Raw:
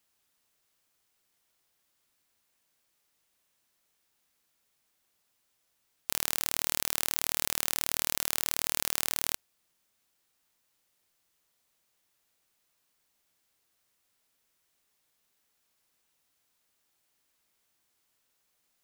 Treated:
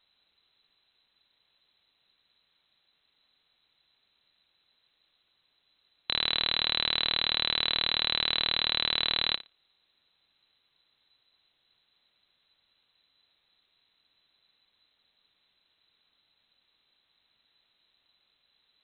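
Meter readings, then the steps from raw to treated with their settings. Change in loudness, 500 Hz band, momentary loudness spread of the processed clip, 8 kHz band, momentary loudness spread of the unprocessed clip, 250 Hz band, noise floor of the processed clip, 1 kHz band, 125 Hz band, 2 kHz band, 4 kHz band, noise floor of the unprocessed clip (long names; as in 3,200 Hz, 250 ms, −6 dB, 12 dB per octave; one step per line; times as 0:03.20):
+3.5 dB, +3.0 dB, 4 LU, below −40 dB, 4 LU, +2.5 dB, −75 dBFS, +3.5 dB, +2.5 dB, +5.5 dB, +12.0 dB, −76 dBFS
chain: spectral tilt −3 dB per octave
voice inversion scrambler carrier 4,000 Hz
flutter between parallel walls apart 10 metres, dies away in 0.23 s
level +8 dB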